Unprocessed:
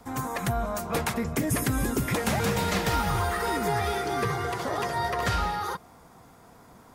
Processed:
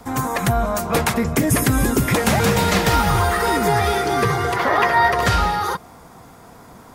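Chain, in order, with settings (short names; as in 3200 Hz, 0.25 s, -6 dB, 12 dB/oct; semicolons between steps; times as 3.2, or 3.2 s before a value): 4.56–5.12 graphic EQ 125/1000/2000/8000 Hz -6/+4/+8/-10 dB; gain +9 dB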